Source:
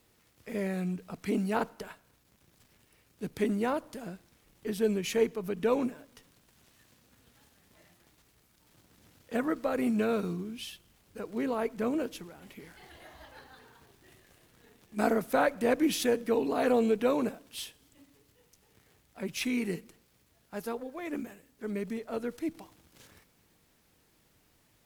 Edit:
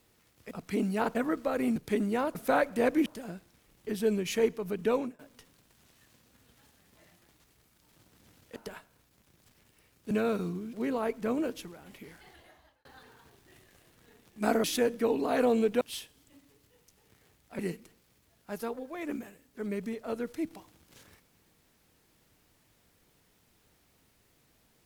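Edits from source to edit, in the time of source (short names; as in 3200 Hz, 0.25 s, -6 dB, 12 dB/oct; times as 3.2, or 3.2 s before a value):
0.51–1.06 cut
1.7–3.25 swap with 9.34–9.95
5.69–5.97 fade out, to -23.5 dB
10.57–11.29 cut
12.66–13.41 fade out linear
15.2–15.91 move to 3.84
17.08–17.46 cut
19.24–19.63 cut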